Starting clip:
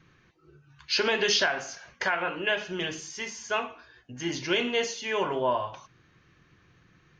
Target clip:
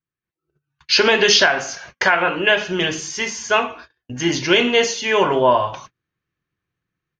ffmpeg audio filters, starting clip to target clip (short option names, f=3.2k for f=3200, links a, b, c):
-af "agate=range=-33dB:threshold=-50dB:ratio=16:detection=peak,dynaudnorm=f=210:g=3:m=12.5dB"